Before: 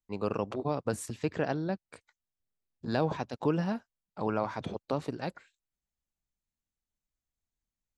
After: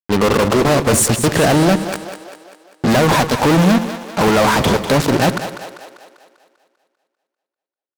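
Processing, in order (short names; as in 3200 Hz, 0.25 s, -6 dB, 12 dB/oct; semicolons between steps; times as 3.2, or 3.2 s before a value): high shelf 5900 Hz +4 dB; fuzz box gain 46 dB, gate -46 dBFS; split-band echo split 340 Hz, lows 84 ms, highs 0.197 s, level -10 dB; gain +2.5 dB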